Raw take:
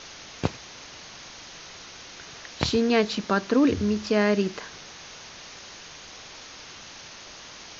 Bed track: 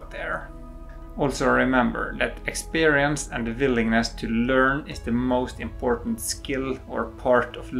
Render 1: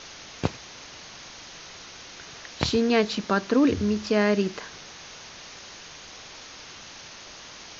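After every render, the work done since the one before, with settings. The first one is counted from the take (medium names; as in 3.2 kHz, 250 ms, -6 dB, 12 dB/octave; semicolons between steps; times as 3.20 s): no audible change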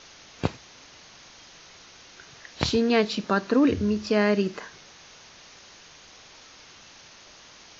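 noise print and reduce 6 dB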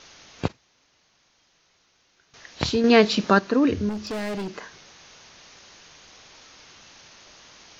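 0.48–2.34 s: gate -42 dBFS, range -15 dB; 2.84–3.39 s: gain +6 dB; 3.89–4.53 s: hard clipper -27.5 dBFS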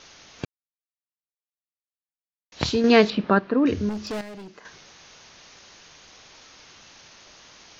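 0.45–2.52 s: mute; 3.10–3.66 s: distance through air 380 m; 4.21–4.65 s: gain -10 dB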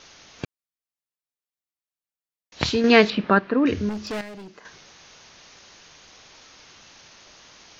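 dynamic bell 2.1 kHz, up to +5 dB, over -41 dBFS, Q 0.94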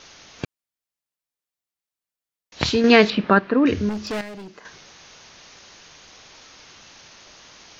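trim +2.5 dB; peak limiter -2 dBFS, peak gain reduction 2.5 dB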